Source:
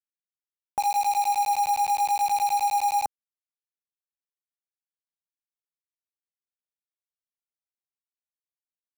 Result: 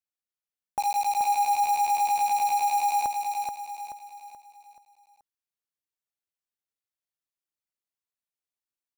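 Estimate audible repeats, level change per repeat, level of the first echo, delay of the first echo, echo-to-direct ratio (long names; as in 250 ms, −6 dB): 5, −7.5 dB, −4.5 dB, 430 ms, −3.5 dB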